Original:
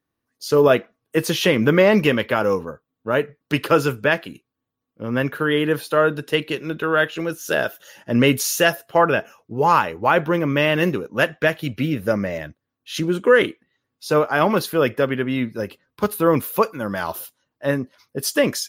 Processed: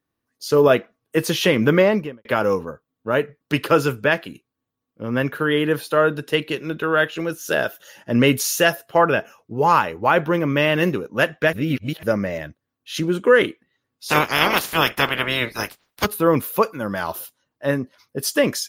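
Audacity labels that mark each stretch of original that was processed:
1.730000	2.250000	studio fade out
11.530000	12.030000	reverse
14.080000	16.040000	spectral limiter ceiling under each frame's peak by 28 dB

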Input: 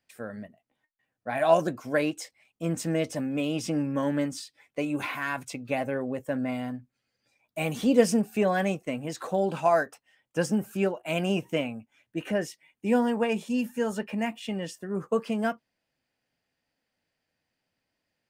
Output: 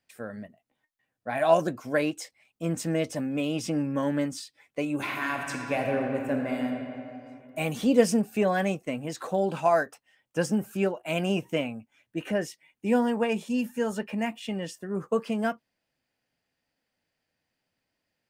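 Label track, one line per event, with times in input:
4.950000	6.660000	reverb throw, RT60 2.8 s, DRR 1.5 dB

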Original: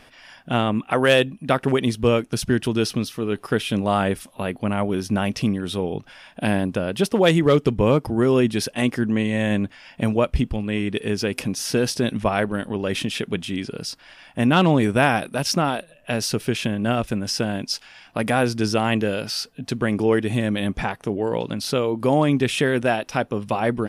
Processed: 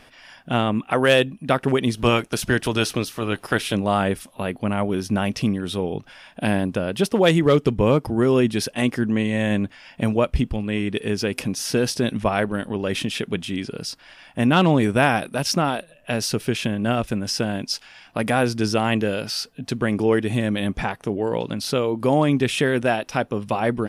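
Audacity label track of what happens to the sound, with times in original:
1.960000	3.740000	spectral limiter ceiling under each frame's peak by 13 dB

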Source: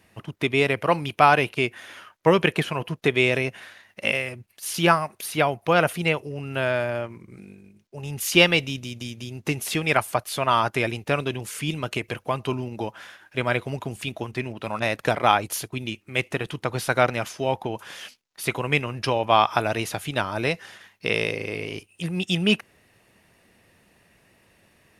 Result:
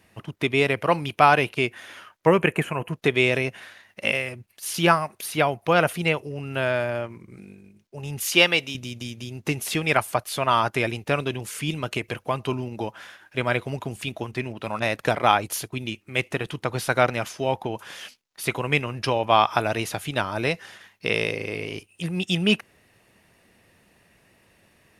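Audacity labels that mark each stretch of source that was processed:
2.270000	2.930000	band shelf 4300 Hz -13.5 dB 1 oct
8.320000	8.750000	HPF 390 Hz 6 dB/oct

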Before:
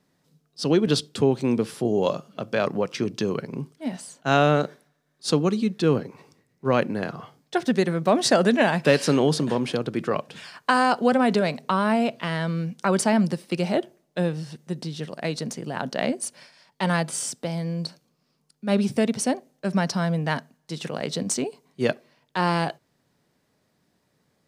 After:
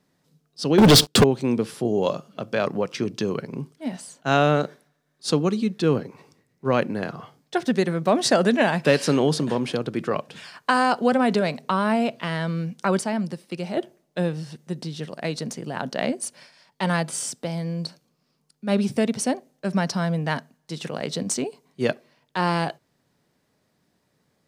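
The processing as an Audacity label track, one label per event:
0.780000	1.240000	sample leveller passes 5
12.990000	13.770000	gain -5.5 dB

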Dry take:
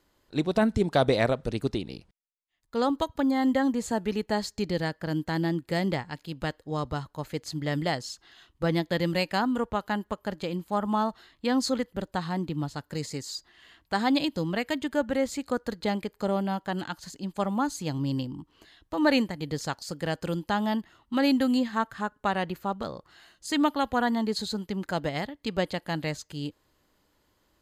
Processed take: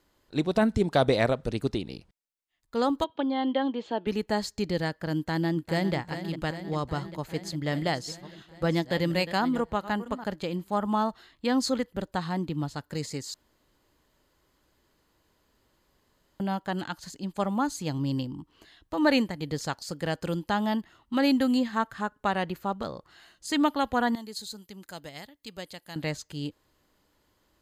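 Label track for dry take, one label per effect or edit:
3.040000	4.070000	speaker cabinet 320–3700 Hz, peaks and dips at 340 Hz +4 dB, 1300 Hz -4 dB, 1900 Hz -7 dB, 3200 Hz +8 dB
5.160000	5.950000	echo throw 0.4 s, feedback 75%, level -10.5 dB
7.030000	10.240000	reverse delay 0.697 s, level -13.5 dB
13.340000	16.400000	room tone
24.150000	25.960000	pre-emphasis coefficient 0.8

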